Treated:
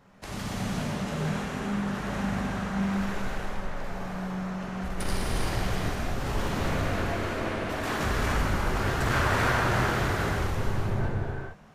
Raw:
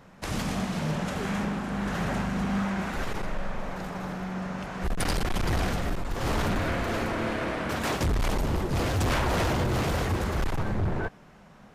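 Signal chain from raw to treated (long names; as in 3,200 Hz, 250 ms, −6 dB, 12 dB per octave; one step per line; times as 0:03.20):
0:07.89–0:10.05: parametric band 1,500 Hz +9 dB 0.98 octaves
reverb whose tail is shaped and stops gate 480 ms flat, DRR −4.5 dB
level −7 dB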